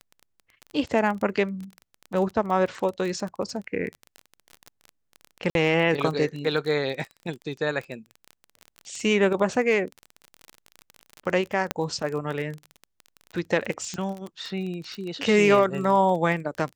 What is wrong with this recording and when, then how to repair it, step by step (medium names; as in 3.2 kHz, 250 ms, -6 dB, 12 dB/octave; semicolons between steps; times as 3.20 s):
crackle 26 per s -30 dBFS
5.50–5.55 s: dropout 52 ms
11.71 s: pop -8 dBFS
13.94 s: pop -20 dBFS
14.95 s: pop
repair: de-click; interpolate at 5.50 s, 52 ms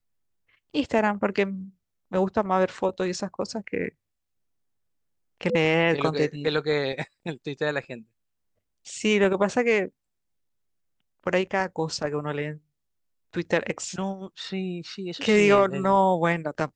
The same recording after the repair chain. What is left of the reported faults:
13.94 s: pop